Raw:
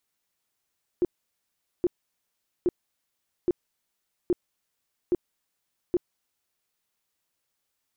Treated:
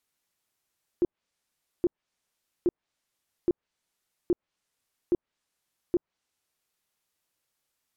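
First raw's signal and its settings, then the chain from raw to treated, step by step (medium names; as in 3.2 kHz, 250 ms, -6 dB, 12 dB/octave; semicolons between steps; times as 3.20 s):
tone bursts 354 Hz, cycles 10, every 0.82 s, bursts 7, -18.5 dBFS
low-pass that closes with the level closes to 950 Hz, closed at -24 dBFS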